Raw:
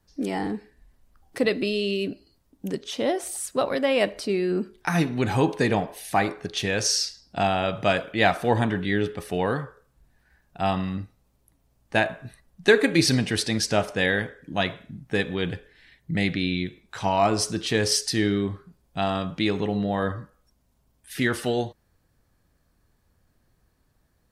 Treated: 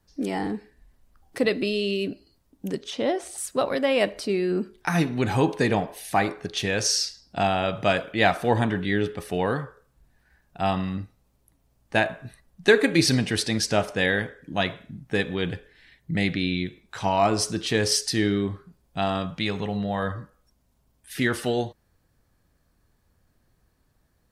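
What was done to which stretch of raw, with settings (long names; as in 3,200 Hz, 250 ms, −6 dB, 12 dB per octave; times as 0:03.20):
0:02.90–0:03.38: high-frequency loss of the air 55 metres
0:19.26–0:20.16: parametric band 330 Hz −8.5 dB 0.76 octaves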